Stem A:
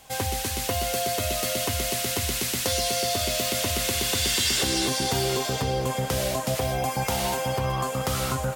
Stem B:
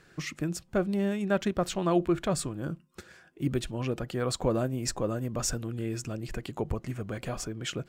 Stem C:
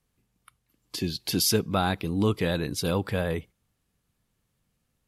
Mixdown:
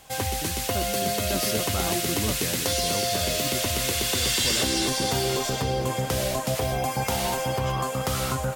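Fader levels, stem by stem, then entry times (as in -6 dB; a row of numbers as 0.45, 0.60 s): 0.0, -7.0, -7.5 dB; 0.00, 0.00, 0.00 s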